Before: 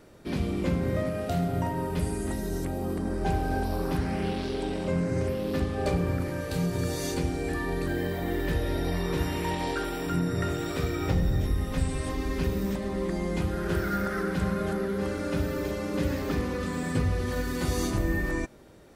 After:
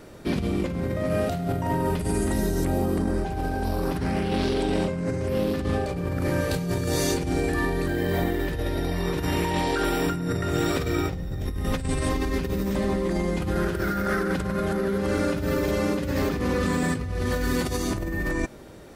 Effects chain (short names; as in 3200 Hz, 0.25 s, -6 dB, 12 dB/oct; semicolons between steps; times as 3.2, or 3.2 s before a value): negative-ratio compressor -31 dBFS, ratio -1; gain +5.5 dB